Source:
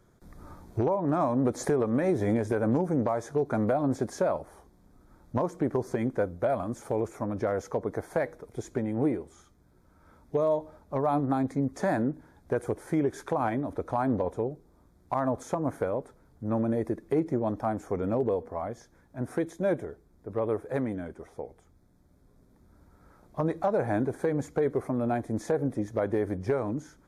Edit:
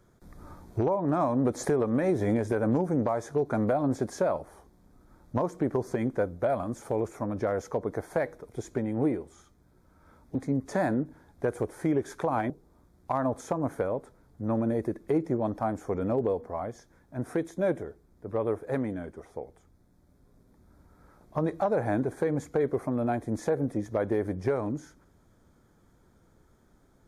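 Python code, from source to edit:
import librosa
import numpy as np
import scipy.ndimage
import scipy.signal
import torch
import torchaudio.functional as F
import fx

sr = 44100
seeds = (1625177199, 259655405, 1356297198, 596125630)

y = fx.edit(x, sr, fx.cut(start_s=10.35, length_s=1.08),
    fx.cut(start_s=13.58, length_s=0.94), tone=tone)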